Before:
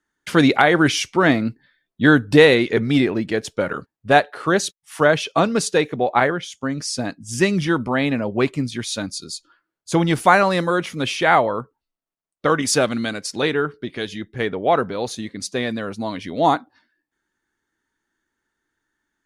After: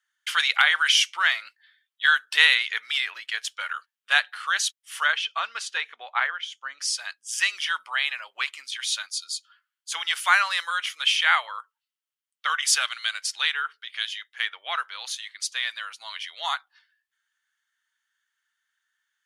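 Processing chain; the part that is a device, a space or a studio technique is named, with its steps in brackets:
headphones lying on a table (high-pass filter 1,300 Hz 24 dB per octave; parametric band 3,100 Hz +8 dB 0.28 octaves)
0:05.12–0:06.81: RIAA equalisation playback

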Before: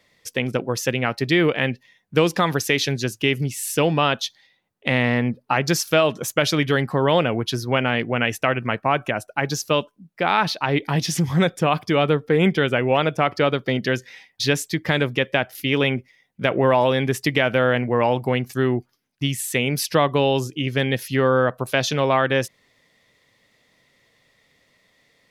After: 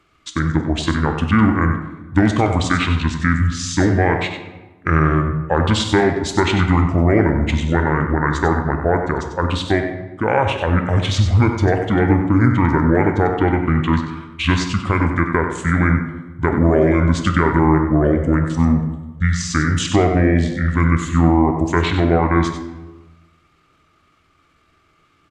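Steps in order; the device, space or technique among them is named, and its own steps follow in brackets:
monster voice (pitch shifter −8 semitones; low-shelf EQ 120 Hz +6 dB; single-tap delay 95 ms −9 dB; convolution reverb RT60 1.2 s, pre-delay 11 ms, DRR 6.5 dB)
level +1.5 dB

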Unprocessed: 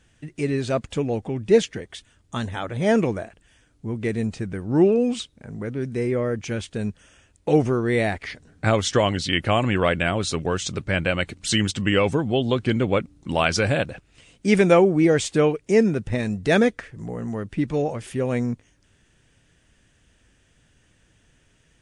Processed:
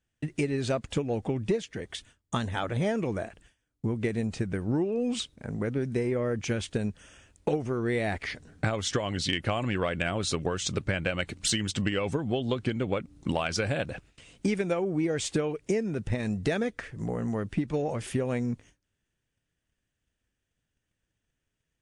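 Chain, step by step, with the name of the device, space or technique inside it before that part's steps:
noise gate with hold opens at −45 dBFS
drum-bus smash (transient designer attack +7 dB, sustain +2 dB; downward compressor 12 to 1, threshold −22 dBFS, peak gain reduction 17 dB; soft clipping −12 dBFS, distortion −26 dB)
level −1.5 dB

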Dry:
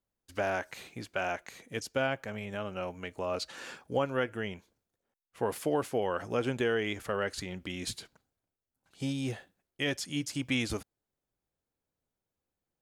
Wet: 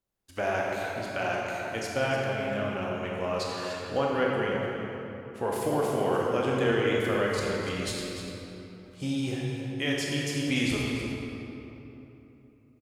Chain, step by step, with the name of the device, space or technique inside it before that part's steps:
cave (single-tap delay 295 ms −11 dB; convolution reverb RT60 3.3 s, pre-delay 19 ms, DRR −3 dB)

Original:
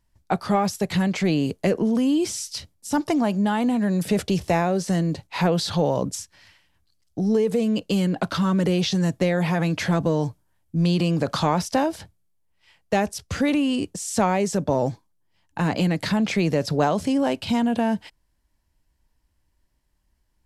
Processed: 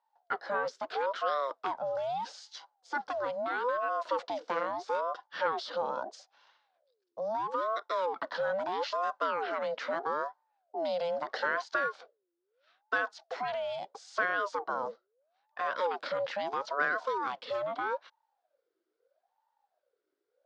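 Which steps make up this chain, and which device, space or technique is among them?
voice changer toy (ring modulator whose carrier an LFO sweeps 620 Hz, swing 45%, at 0.77 Hz; loudspeaker in its box 520–4,800 Hz, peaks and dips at 520 Hz +7 dB, 1,500 Hz +7 dB, 2,500 Hz −6 dB)
level −8 dB

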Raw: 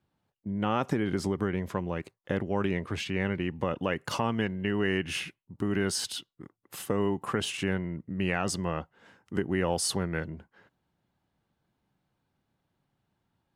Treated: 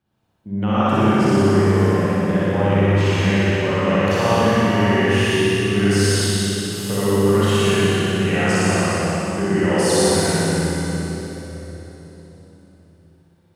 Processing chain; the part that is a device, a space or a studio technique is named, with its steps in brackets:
tunnel (flutter between parallel walls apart 10.4 metres, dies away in 1.5 s; convolution reverb RT60 3.8 s, pre-delay 38 ms, DRR −8.5 dB)

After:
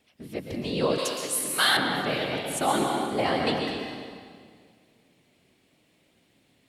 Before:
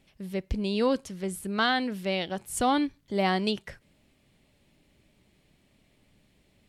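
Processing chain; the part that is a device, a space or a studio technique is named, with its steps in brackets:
whispering ghost (random phases in short frames; high-pass filter 260 Hz 6 dB per octave; convolution reverb RT60 2.0 s, pre-delay 111 ms, DRR 0.5 dB)
0:00.98–0:01.77: spectral tilt +4 dB per octave

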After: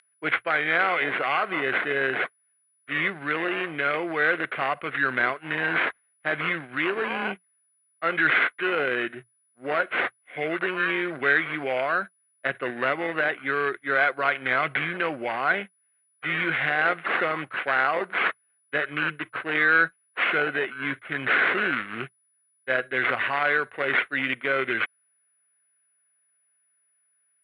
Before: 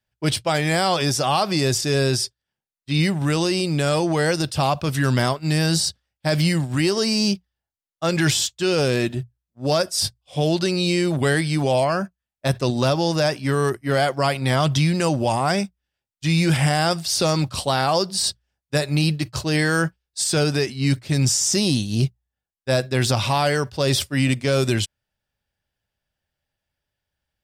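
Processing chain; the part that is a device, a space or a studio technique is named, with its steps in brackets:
toy sound module (linearly interpolated sample-rate reduction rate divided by 8×; switching amplifier with a slow clock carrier 9,900 Hz; loudspeaker in its box 520–3,800 Hz, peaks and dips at 600 Hz −6 dB, 880 Hz −10 dB, 1,500 Hz +9 dB, 2,100 Hz +7 dB)

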